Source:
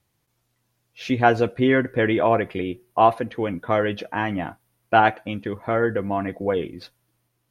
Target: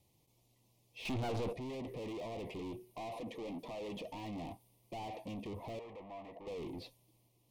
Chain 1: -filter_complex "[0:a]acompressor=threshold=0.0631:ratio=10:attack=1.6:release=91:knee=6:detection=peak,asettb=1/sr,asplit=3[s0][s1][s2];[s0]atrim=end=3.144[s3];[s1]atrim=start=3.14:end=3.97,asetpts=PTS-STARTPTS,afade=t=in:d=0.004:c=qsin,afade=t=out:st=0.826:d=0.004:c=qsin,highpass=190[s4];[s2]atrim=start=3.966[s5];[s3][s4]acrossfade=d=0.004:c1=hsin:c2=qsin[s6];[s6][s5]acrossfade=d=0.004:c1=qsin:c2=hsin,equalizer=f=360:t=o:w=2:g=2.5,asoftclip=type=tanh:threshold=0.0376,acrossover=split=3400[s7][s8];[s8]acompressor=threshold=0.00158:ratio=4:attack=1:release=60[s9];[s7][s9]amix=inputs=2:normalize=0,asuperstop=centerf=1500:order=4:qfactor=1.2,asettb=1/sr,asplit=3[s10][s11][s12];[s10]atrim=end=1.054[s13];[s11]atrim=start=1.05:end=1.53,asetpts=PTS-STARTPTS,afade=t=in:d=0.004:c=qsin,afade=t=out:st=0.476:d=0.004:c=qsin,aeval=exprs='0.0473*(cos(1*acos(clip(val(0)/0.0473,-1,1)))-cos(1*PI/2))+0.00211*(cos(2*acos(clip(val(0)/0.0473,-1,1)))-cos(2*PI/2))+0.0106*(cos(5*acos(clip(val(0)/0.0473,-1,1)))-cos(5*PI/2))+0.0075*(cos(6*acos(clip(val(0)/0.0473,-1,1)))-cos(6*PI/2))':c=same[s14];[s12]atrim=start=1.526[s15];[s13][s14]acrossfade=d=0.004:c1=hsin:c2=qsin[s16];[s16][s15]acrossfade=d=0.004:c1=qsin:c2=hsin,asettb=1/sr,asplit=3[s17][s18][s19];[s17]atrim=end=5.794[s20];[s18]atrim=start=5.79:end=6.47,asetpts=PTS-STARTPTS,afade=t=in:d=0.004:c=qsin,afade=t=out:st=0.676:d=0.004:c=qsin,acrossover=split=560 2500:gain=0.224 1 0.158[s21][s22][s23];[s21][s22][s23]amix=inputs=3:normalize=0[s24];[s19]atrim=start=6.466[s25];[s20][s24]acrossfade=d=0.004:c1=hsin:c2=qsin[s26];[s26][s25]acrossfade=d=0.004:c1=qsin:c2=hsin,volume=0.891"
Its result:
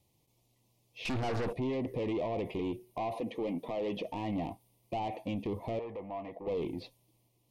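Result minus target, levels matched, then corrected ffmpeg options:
saturation: distortion -6 dB
-filter_complex "[0:a]acompressor=threshold=0.0631:ratio=10:attack=1.6:release=91:knee=6:detection=peak,asettb=1/sr,asplit=3[s0][s1][s2];[s0]atrim=end=3.144[s3];[s1]atrim=start=3.14:end=3.97,asetpts=PTS-STARTPTS,afade=t=in:d=0.004:c=qsin,afade=t=out:st=0.826:d=0.004:c=qsin,highpass=190[s4];[s2]atrim=start=3.966[s5];[s3][s4]acrossfade=d=0.004:c1=hsin:c2=qsin[s6];[s6][s5]acrossfade=d=0.004:c1=qsin:c2=hsin,equalizer=f=360:t=o:w=2:g=2.5,asoftclip=type=tanh:threshold=0.01,acrossover=split=3400[s7][s8];[s8]acompressor=threshold=0.00158:ratio=4:attack=1:release=60[s9];[s7][s9]amix=inputs=2:normalize=0,asuperstop=centerf=1500:order=4:qfactor=1.2,asettb=1/sr,asplit=3[s10][s11][s12];[s10]atrim=end=1.054[s13];[s11]atrim=start=1.05:end=1.53,asetpts=PTS-STARTPTS,afade=t=in:d=0.004:c=qsin,afade=t=out:st=0.476:d=0.004:c=qsin,aeval=exprs='0.0473*(cos(1*acos(clip(val(0)/0.0473,-1,1)))-cos(1*PI/2))+0.00211*(cos(2*acos(clip(val(0)/0.0473,-1,1)))-cos(2*PI/2))+0.0106*(cos(5*acos(clip(val(0)/0.0473,-1,1)))-cos(5*PI/2))+0.0075*(cos(6*acos(clip(val(0)/0.0473,-1,1)))-cos(6*PI/2))':c=same[s14];[s12]atrim=start=1.526[s15];[s13][s14]acrossfade=d=0.004:c1=hsin:c2=qsin[s16];[s16][s15]acrossfade=d=0.004:c1=qsin:c2=hsin,asettb=1/sr,asplit=3[s17][s18][s19];[s17]atrim=end=5.794[s20];[s18]atrim=start=5.79:end=6.47,asetpts=PTS-STARTPTS,afade=t=in:d=0.004:c=qsin,afade=t=out:st=0.676:d=0.004:c=qsin,acrossover=split=560 2500:gain=0.224 1 0.158[s21][s22][s23];[s21][s22][s23]amix=inputs=3:normalize=0[s24];[s19]atrim=start=6.466[s25];[s20][s24]acrossfade=d=0.004:c1=hsin:c2=qsin[s26];[s26][s25]acrossfade=d=0.004:c1=qsin:c2=hsin,volume=0.891"

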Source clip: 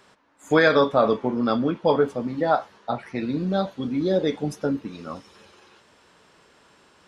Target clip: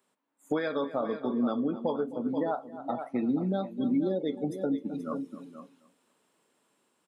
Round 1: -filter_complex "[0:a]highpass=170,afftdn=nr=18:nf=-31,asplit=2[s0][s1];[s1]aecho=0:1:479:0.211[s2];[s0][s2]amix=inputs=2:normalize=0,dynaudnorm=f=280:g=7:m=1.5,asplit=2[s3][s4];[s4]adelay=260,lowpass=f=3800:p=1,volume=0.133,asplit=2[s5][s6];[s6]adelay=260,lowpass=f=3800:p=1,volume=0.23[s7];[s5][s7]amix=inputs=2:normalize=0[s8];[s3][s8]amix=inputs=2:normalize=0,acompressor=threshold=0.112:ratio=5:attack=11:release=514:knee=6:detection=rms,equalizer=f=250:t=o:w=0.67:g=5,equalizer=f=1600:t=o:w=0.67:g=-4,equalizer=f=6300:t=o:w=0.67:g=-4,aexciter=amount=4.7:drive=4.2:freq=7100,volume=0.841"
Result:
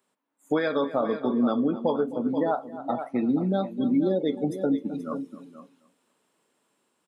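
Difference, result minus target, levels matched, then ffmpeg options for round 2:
compression: peak gain reduction -5 dB
-filter_complex "[0:a]highpass=170,afftdn=nr=18:nf=-31,asplit=2[s0][s1];[s1]aecho=0:1:479:0.211[s2];[s0][s2]amix=inputs=2:normalize=0,dynaudnorm=f=280:g=7:m=1.5,asplit=2[s3][s4];[s4]adelay=260,lowpass=f=3800:p=1,volume=0.133,asplit=2[s5][s6];[s6]adelay=260,lowpass=f=3800:p=1,volume=0.23[s7];[s5][s7]amix=inputs=2:normalize=0[s8];[s3][s8]amix=inputs=2:normalize=0,acompressor=threshold=0.0531:ratio=5:attack=11:release=514:knee=6:detection=rms,equalizer=f=250:t=o:w=0.67:g=5,equalizer=f=1600:t=o:w=0.67:g=-4,equalizer=f=6300:t=o:w=0.67:g=-4,aexciter=amount=4.7:drive=4.2:freq=7100,volume=0.841"

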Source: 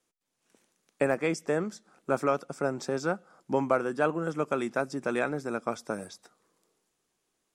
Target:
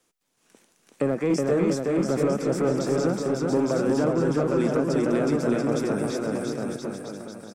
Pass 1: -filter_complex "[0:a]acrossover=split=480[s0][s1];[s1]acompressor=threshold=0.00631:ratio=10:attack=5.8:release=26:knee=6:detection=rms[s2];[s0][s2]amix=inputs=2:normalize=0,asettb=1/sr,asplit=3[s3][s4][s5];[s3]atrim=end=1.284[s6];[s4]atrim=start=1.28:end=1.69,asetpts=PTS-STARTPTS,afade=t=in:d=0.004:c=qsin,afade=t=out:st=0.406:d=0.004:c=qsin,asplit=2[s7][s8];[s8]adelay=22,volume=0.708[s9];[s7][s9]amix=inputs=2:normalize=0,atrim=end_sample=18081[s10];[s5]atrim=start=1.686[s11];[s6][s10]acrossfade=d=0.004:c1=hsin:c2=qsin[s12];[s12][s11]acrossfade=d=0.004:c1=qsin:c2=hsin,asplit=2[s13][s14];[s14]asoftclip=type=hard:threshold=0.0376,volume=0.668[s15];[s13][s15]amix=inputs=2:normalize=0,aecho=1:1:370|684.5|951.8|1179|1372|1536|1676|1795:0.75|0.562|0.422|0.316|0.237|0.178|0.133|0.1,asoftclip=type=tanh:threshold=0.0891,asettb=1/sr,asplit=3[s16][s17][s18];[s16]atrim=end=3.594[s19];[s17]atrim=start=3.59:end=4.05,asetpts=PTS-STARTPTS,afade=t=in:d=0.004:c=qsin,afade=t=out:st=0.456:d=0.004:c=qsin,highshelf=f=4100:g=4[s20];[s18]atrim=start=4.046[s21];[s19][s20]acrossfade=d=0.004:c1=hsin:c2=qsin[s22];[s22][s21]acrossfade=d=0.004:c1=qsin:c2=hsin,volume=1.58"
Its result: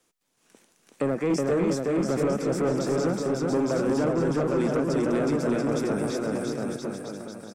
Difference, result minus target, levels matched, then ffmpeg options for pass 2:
saturation: distortion +12 dB
-filter_complex "[0:a]acrossover=split=480[s0][s1];[s1]acompressor=threshold=0.00631:ratio=10:attack=5.8:release=26:knee=6:detection=rms[s2];[s0][s2]amix=inputs=2:normalize=0,asettb=1/sr,asplit=3[s3][s4][s5];[s3]atrim=end=1.284[s6];[s4]atrim=start=1.28:end=1.69,asetpts=PTS-STARTPTS,afade=t=in:d=0.004:c=qsin,afade=t=out:st=0.406:d=0.004:c=qsin,asplit=2[s7][s8];[s8]adelay=22,volume=0.708[s9];[s7][s9]amix=inputs=2:normalize=0,atrim=end_sample=18081[s10];[s5]atrim=start=1.686[s11];[s6][s10]acrossfade=d=0.004:c1=hsin:c2=qsin[s12];[s12][s11]acrossfade=d=0.004:c1=qsin:c2=hsin,asplit=2[s13][s14];[s14]asoftclip=type=hard:threshold=0.0376,volume=0.668[s15];[s13][s15]amix=inputs=2:normalize=0,aecho=1:1:370|684.5|951.8|1179|1372|1536|1676|1795:0.75|0.562|0.422|0.316|0.237|0.178|0.133|0.1,asoftclip=type=tanh:threshold=0.224,asettb=1/sr,asplit=3[s16][s17][s18];[s16]atrim=end=3.594[s19];[s17]atrim=start=3.59:end=4.05,asetpts=PTS-STARTPTS,afade=t=in:d=0.004:c=qsin,afade=t=out:st=0.456:d=0.004:c=qsin,highshelf=f=4100:g=4[s20];[s18]atrim=start=4.046[s21];[s19][s20]acrossfade=d=0.004:c1=hsin:c2=qsin[s22];[s22][s21]acrossfade=d=0.004:c1=qsin:c2=hsin,volume=1.58"

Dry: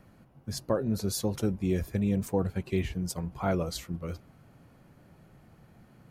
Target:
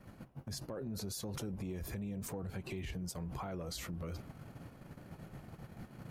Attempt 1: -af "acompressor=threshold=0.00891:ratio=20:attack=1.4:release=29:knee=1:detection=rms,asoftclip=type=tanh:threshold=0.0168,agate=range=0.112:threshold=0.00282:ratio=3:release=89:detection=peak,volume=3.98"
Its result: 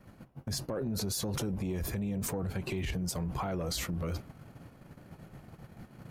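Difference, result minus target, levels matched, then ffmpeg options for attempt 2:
compression: peak gain reduction -6.5 dB
-af "acompressor=threshold=0.00398:ratio=20:attack=1.4:release=29:knee=1:detection=rms,asoftclip=type=tanh:threshold=0.0168,agate=range=0.112:threshold=0.00282:ratio=3:release=89:detection=peak,volume=3.98"

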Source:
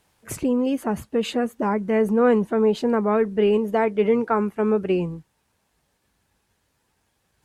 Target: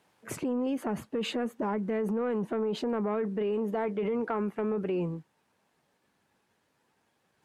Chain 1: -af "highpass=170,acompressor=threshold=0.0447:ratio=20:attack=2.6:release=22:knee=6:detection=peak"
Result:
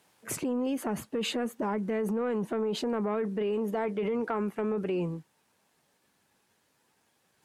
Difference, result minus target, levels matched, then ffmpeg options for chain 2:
8 kHz band +7.0 dB
-af "highpass=170,highshelf=f=4100:g=-9.5,acompressor=threshold=0.0447:ratio=20:attack=2.6:release=22:knee=6:detection=peak"

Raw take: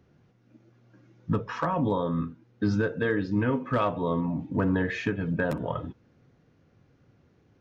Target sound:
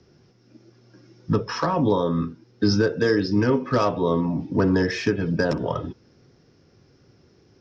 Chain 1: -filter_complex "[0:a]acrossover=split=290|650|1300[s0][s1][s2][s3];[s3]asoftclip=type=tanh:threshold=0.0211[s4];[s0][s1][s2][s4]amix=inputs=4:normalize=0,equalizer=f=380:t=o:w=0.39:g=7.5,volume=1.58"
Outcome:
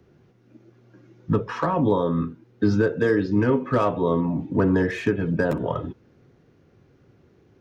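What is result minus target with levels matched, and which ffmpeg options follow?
4 kHz band -10.0 dB
-filter_complex "[0:a]acrossover=split=290|650|1300[s0][s1][s2][s3];[s3]asoftclip=type=tanh:threshold=0.0211[s4];[s0][s1][s2][s4]amix=inputs=4:normalize=0,lowpass=f=5300:t=q:w=9.2,equalizer=f=380:t=o:w=0.39:g=7.5,volume=1.58"

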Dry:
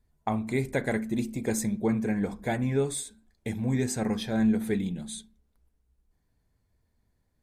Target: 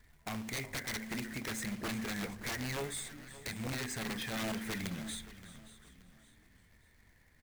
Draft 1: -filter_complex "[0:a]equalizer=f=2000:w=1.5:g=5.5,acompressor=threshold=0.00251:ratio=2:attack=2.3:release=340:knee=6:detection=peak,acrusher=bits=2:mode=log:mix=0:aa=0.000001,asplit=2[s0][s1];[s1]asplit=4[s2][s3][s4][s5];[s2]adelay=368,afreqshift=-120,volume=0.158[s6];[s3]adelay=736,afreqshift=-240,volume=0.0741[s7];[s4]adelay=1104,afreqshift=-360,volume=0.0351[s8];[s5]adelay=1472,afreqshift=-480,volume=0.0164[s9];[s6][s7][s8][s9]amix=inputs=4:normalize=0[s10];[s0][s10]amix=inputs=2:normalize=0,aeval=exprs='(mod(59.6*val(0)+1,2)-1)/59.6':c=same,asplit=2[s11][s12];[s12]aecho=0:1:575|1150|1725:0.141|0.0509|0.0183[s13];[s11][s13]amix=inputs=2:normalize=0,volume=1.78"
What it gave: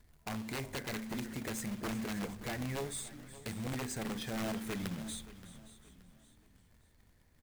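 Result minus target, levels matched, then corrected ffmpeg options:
2 kHz band -3.5 dB
-filter_complex "[0:a]equalizer=f=2000:w=1.5:g=17,acompressor=threshold=0.00251:ratio=2:attack=2.3:release=340:knee=6:detection=peak,acrusher=bits=2:mode=log:mix=0:aa=0.000001,asplit=2[s0][s1];[s1]asplit=4[s2][s3][s4][s5];[s2]adelay=368,afreqshift=-120,volume=0.158[s6];[s3]adelay=736,afreqshift=-240,volume=0.0741[s7];[s4]adelay=1104,afreqshift=-360,volume=0.0351[s8];[s5]adelay=1472,afreqshift=-480,volume=0.0164[s9];[s6][s7][s8][s9]amix=inputs=4:normalize=0[s10];[s0][s10]amix=inputs=2:normalize=0,aeval=exprs='(mod(59.6*val(0)+1,2)-1)/59.6':c=same,asplit=2[s11][s12];[s12]aecho=0:1:575|1150|1725:0.141|0.0509|0.0183[s13];[s11][s13]amix=inputs=2:normalize=0,volume=1.78"

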